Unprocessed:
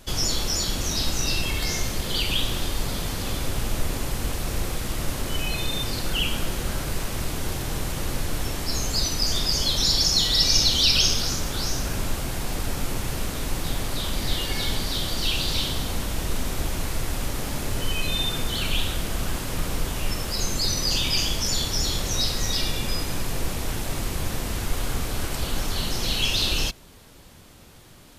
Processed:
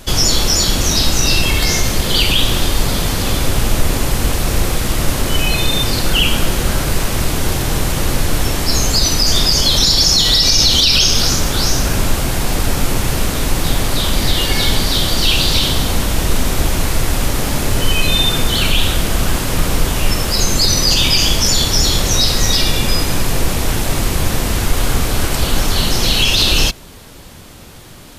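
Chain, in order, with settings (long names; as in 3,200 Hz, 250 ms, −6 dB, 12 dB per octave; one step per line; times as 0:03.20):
boost into a limiter +12.5 dB
level −1 dB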